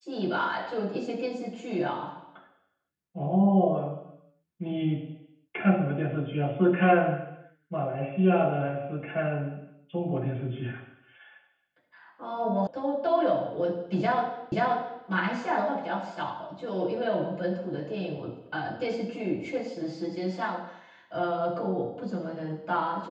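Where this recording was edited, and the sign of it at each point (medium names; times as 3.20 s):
12.67 s: sound stops dead
14.52 s: repeat of the last 0.53 s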